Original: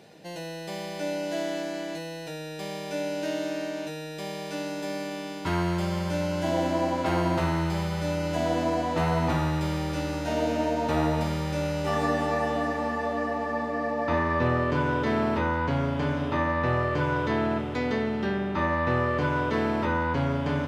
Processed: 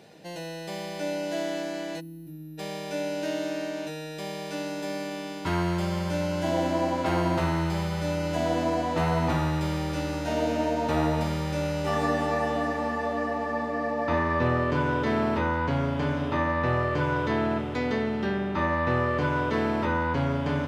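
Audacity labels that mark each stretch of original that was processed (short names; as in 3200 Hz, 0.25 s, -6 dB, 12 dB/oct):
2.000000	2.580000	spectral gain 380–10000 Hz -27 dB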